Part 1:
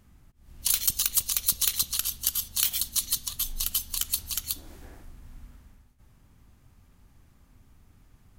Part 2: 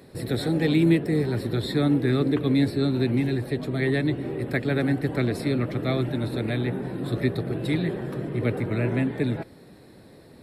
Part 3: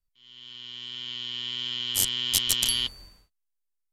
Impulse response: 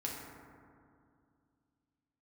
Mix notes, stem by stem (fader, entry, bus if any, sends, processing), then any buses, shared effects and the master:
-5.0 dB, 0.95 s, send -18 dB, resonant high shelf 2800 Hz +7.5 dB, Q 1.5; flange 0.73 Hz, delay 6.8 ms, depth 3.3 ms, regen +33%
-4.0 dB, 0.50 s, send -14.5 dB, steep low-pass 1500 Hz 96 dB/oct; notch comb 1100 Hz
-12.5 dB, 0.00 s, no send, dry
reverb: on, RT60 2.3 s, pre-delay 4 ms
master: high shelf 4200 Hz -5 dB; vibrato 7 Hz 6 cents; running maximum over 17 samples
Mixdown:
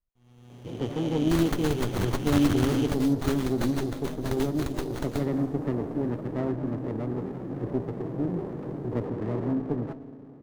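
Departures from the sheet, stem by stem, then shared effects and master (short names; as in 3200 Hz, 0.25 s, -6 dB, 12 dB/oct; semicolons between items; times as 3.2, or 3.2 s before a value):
stem 1: entry 0.95 s -> 0.65 s; stem 3 -12.5 dB -> -2.0 dB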